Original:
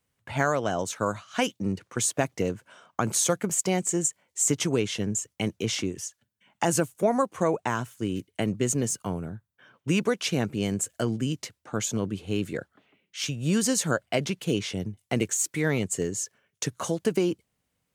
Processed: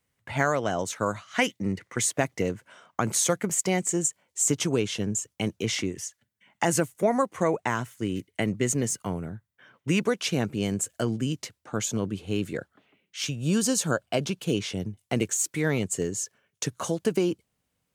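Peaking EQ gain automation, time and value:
peaking EQ 2 kHz 0.23 oct
+5 dB
from 1.27 s +14.5 dB
from 2.09 s +6 dB
from 3.92 s -2.5 dB
from 5.63 s +7.5 dB
from 10.01 s -0.5 dB
from 13.41 s -10.5 dB
from 14.42 s -2 dB

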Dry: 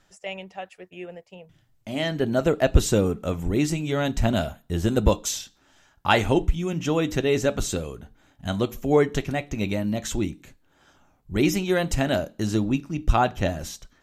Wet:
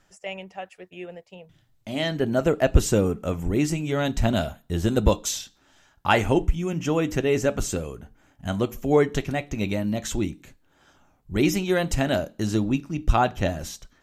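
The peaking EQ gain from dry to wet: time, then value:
peaking EQ 3.8 kHz 0.33 oct
-5.5 dB
from 0.76 s +4 dB
from 2.17 s -6 dB
from 3.99 s +1 dB
from 6.08 s -8.5 dB
from 8.79 s -0.5 dB

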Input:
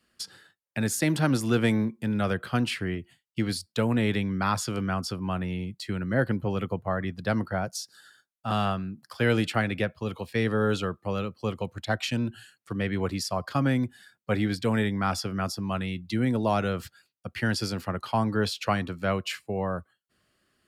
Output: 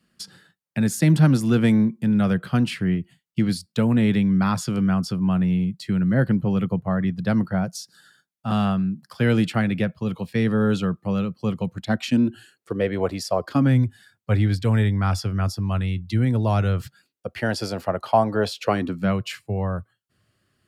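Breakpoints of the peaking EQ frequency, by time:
peaking EQ +13 dB 0.97 oct
11.73 s 170 Hz
13.23 s 740 Hz
13.86 s 99 Hz
16.77 s 99 Hz
17.36 s 640 Hz
18.53 s 640 Hz
19.25 s 110 Hz

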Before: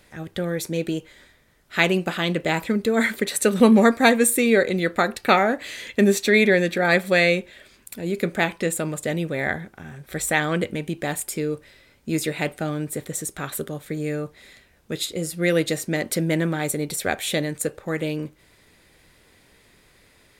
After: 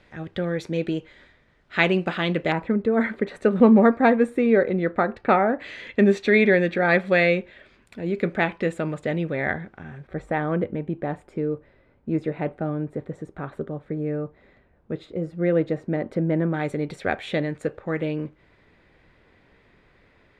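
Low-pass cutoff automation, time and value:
3.2 kHz
from 2.52 s 1.4 kHz
from 5.60 s 2.5 kHz
from 10.07 s 1.1 kHz
from 16.54 s 2.2 kHz

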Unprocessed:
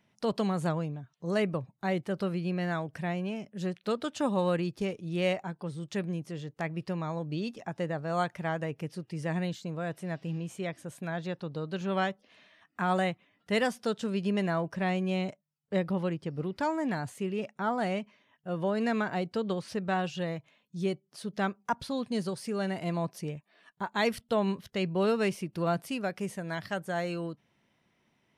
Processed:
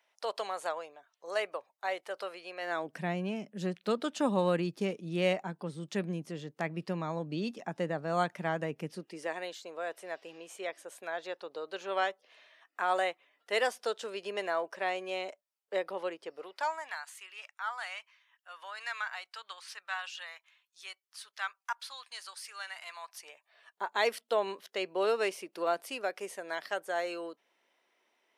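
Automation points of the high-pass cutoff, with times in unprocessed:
high-pass 24 dB/octave
2.58 s 540 Hz
2.99 s 170 Hz
8.89 s 170 Hz
9.34 s 420 Hz
16.25 s 420 Hz
17.04 s 1.1 kHz
23.01 s 1.1 kHz
23.84 s 380 Hz

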